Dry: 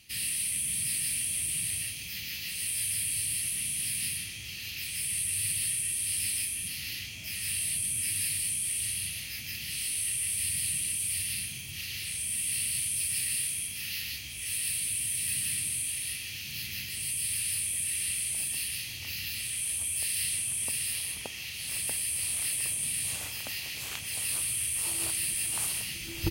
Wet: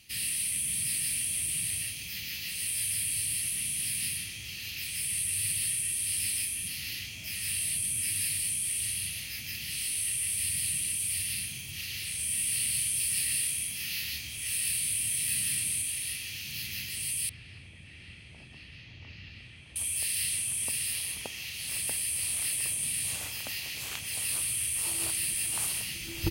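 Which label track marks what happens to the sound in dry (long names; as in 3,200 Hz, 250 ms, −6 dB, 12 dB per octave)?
12.160000	15.820000	double-tracking delay 27 ms −5 dB
17.290000	19.760000	head-to-tape spacing loss at 10 kHz 40 dB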